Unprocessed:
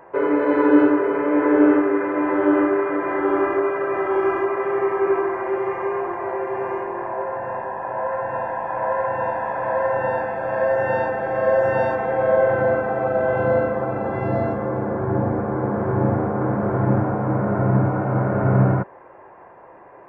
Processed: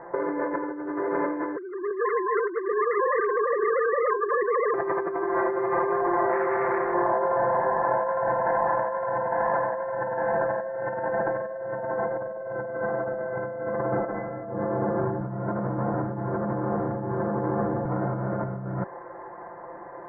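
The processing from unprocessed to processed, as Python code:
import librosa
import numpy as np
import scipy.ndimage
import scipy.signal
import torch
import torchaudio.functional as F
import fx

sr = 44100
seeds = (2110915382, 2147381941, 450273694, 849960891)

y = fx.sine_speech(x, sr, at=(1.56, 4.74))
y = fx.transformer_sat(y, sr, knee_hz=1700.0, at=(6.31, 6.94))
y = fx.lowpass(y, sr, hz=1900.0, slope=12, at=(11.64, 12.68))
y = fx.reverb_throw(y, sr, start_s=13.98, length_s=0.43, rt60_s=0.82, drr_db=-7.5)
y = fx.edit(y, sr, fx.reverse_span(start_s=15.21, length_s=2.64), tone=tone)
y = scipy.signal.sosfilt(scipy.signal.ellip(4, 1.0, 40, 2000.0, 'lowpass', fs=sr, output='sos'), y)
y = y + 0.68 * np.pad(y, (int(5.8 * sr / 1000.0), 0))[:len(y)]
y = fx.over_compress(y, sr, threshold_db=-25.0, ratio=-1.0)
y = y * 10.0 ** (-2.5 / 20.0)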